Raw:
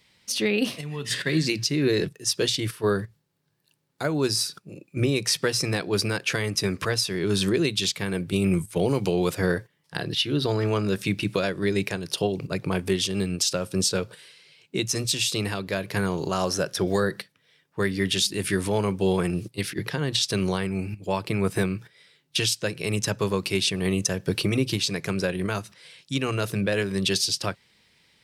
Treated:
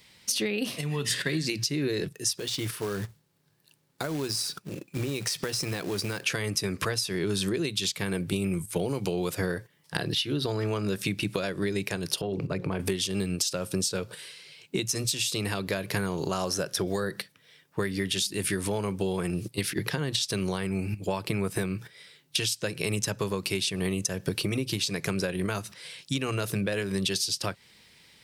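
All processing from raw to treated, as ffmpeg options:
-filter_complex "[0:a]asettb=1/sr,asplit=3[a][b][c];[a]atrim=end=2.384[d];[b]atrim=start=2.38:end=6.24,asetpts=PTS-STARTPTS,afade=t=in:d=0.004:c=qsin,afade=t=out:st=3.856:d=0.004:c=qsin,acrusher=bits=3:mode=log:mix=0:aa=0.000001,highshelf=f=9.9k:g=-5.5,acompressor=threshold=-31dB:ratio=5:attack=3.2:release=140:knee=1:detection=peak[e];[c]atrim=start=6.236[f];[d][e]acrossfade=d=0.004:c1=hsin:c2=qsin[g];[g][f]acrossfade=d=0.004:c1=qsin:c2=hsin,asettb=1/sr,asplit=3[h][i][j];[h]atrim=end=12.214[k];[i]atrim=start=12.21:end=12.8,asetpts=PTS-STARTPTS,afade=t=in:d=0.004:c=qsin,afade=t=out:st=0.586:d=0.004:c=qsin,lowpass=f=2k:p=1,bandreject=f=60:t=h:w=6,bandreject=f=120:t=h:w=6,bandreject=f=180:t=h:w=6,bandreject=f=240:t=h:w=6,bandreject=f=300:t=h:w=6,bandreject=f=360:t=h:w=6,bandreject=f=420:t=h:w=6,bandreject=f=480:t=h:w=6,bandreject=f=540:t=h:w=6,acompressor=threshold=-28dB:ratio=3:attack=3.2:release=140:knee=1:detection=peak[l];[j]atrim=start=12.796[m];[k][l]acrossfade=d=0.004:c1=hsin:c2=qsin[n];[n][m]acrossfade=d=0.004:c1=qsin:c2=hsin,highshelf=f=7.6k:g=6.5,acompressor=threshold=-29dB:ratio=10,volume=4dB"

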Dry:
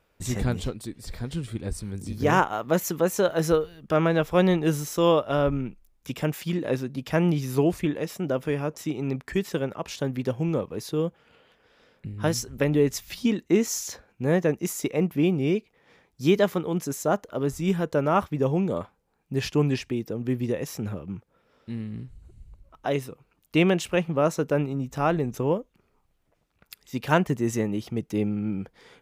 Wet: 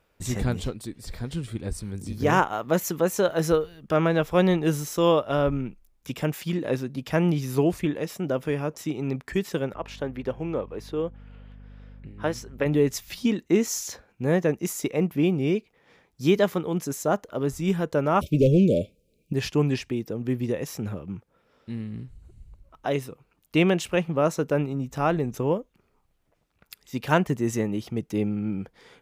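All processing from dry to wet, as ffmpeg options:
-filter_complex "[0:a]asettb=1/sr,asplit=3[a][b][c];[a]atrim=end=9.744[d];[b]atrim=start=9.74:end=12.66,asetpts=PTS-STARTPTS,afade=t=in:d=0.004:c=qsin,afade=t=out:st=2.916:d=0.004:c=qsin,bass=f=250:g=-9,treble=f=4k:g=-12,aeval=exprs='val(0)+0.00631*(sin(2*PI*50*n/s)+sin(2*PI*2*50*n/s)/2+sin(2*PI*3*50*n/s)/3+sin(2*PI*4*50*n/s)/4+sin(2*PI*5*50*n/s)/5)':c=same[e];[c]atrim=start=12.656[f];[d][e]acrossfade=d=0.004:c1=hsin:c2=qsin[g];[g][f]acrossfade=d=0.004:c1=qsin:c2=hsin,asettb=1/sr,asplit=3[h][i][j];[h]atrim=end=18.214[k];[i]atrim=start=18.21:end=19.33,asetpts=PTS-STARTPTS,afade=t=in:d=0.004:c=qsin,afade=t=out:st=1.116:d=0.004:c=qsin,acontrast=89,asoftclip=type=hard:threshold=-13.5dB,asuperstop=centerf=1200:order=20:qfactor=0.71[l];[j]atrim=start=19.326[m];[k][l]acrossfade=d=0.004:c1=hsin:c2=qsin[n];[n][m]acrossfade=d=0.004:c1=qsin:c2=hsin"

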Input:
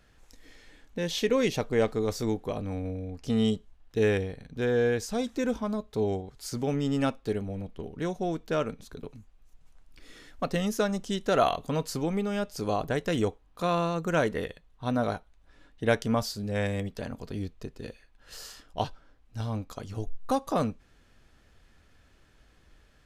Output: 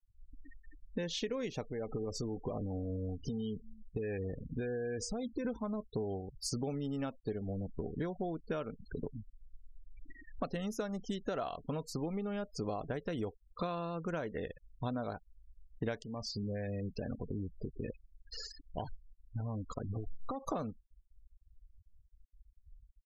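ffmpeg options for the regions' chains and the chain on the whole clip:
-filter_complex "[0:a]asettb=1/sr,asplit=3[a][b][c];[a]atrim=end=1.674[d];[b]atrim=start=1.67:end=5.45,asetpts=PTS-STARTPTS,afade=t=in:d=0.004:c=qsin,afade=t=out:st=3.776:d=0.004:c=qsin,acompressor=threshold=-31dB:ratio=12:attack=3.2:release=140:knee=1:detection=peak,aecho=1:1:287:0.0708,atrim=end_sample=166698[e];[c]atrim=start=5.446[f];[d][e]acrossfade=d=0.004:c1=hsin:c2=qsin[g];[g][f]acrossfade=d=0.004:c1=qsin:c2=hsin,asettb=1/sr,asplit=3[h][i][j];[h]atrim=end=16.024[k];[i]atrim=start=16.02:end=20.44,asetpts=PTS-STARTPTS,afade=t=in:d=0.004:c=qsin,afade=t=out:st=4.416:d=0.004:c=qsin,aeval=exprs='clip(val(0),-1,0.0631)':c=same,acompressor=threshold=-35dB:ratio=4:attack=3.2:release=140:knee=1:detection=peak[l];[j]atrim=start=20.436[m];[k][l]acrossfade=d=0.004:c1=hsin:c2=qsin[n];[n][m]acrossfade=d=0.004:c1=qsin:c2=hsin,afftfilt=real='re*gte(hypot(re,im),0.0112)':imag='im*gte(hypot(re,im),0.0112)':win_size=1024:overlap=0.75,acompressor=threshold=-37dB:ratio=12,adynamicequalizer=threshold=0.00141:dfrequency=1600:dqfactor=0.7:tfrequency=1600:tqfactor=0.7:attack=5:release=100:ratio=0.375:range=2:mode=cutabove:tftype=highshelf,volume=3.5dB"

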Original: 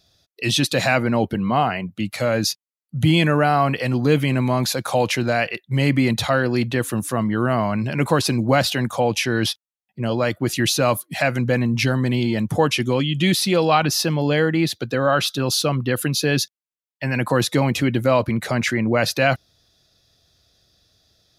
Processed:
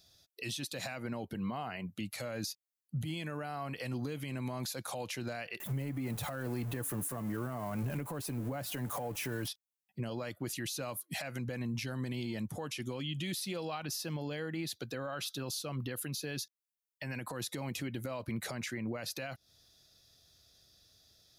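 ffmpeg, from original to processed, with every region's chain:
-filter_complex "[0:a]asettb=1/sr,asplit=3[a][b][c];[a]atrim=end=5.604[d];[b]atrim=start=5.6:end=9.48,asetpts=PTS-STARTPTS,afade=t=in:d=0.004:c=qsin,afade=t=out:st=3.876:d=0.004:c=qsin,aeval=exprs='val(0)+0.5*0.0473*sgn(val(0))':c=same,equalizer=f=4.4k:t=o:w=2:g=-12.5,aecho=1:1:6.9:0.31,atrim=end_sample=171108[e];[c]atrim=start=9.476[f];[d][e]acrossfade=d=0.004:c1=hsin:c2=qsin[g];[g][f]acrossfade=d=0.004:c1=qsin:c2=hsin,highshelf=f=5.5k:g=10,acompressor=threshold=-21dB:ratio=6,alimiter=limit=-22dB:level=0:latency=1:release=244,volume=-7dB"

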